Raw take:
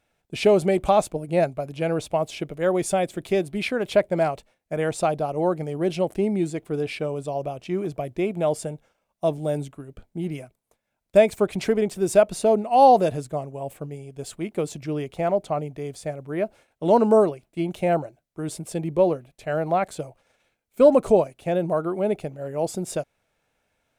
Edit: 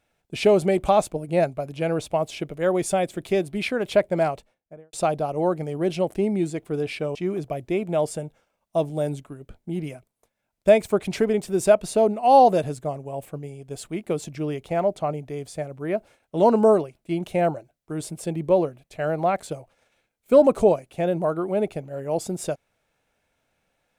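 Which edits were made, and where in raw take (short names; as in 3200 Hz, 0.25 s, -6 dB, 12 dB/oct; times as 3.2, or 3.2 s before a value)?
4.28–4.93 studio fade out
7.15–7.63 cut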